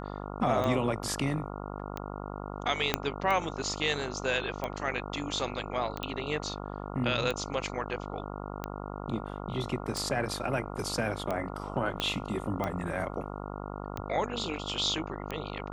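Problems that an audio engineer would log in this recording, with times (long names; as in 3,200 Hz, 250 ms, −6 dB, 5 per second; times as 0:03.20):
mains buzz 50 Hz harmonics 28 −39 dBFS
scratch tick 45 rpm −19 dBFS
0:02.94: click −9 dBFS
0:06.03: click −20 dBFS
0:12.00: click −15 dBFS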